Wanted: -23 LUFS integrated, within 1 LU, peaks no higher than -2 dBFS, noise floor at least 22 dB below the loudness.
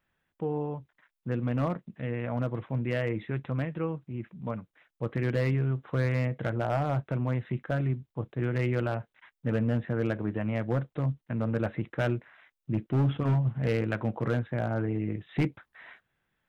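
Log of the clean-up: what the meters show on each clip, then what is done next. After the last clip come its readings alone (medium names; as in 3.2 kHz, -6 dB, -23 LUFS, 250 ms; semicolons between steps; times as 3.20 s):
clipped samples 0.8%; clipping level -20.0 dBFS; loudness -31.0 LUFS; peak level -20.0 dBFS; loudness target -23.0 LUFS
-> clip repair -20 dBFS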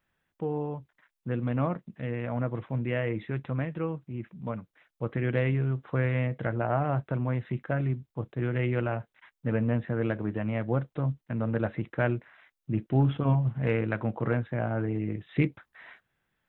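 clipped samples 0.0%; loudness -30.5 LUFS; peak level -11.0 dBFS; loudness target -23.0 LUFS
-> trim +7.5 dB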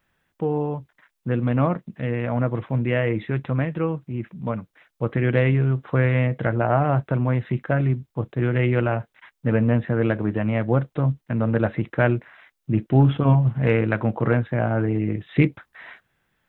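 loudness -23.0 LUFS; peak level -3.5 dBFS; noise floor -77 dBFS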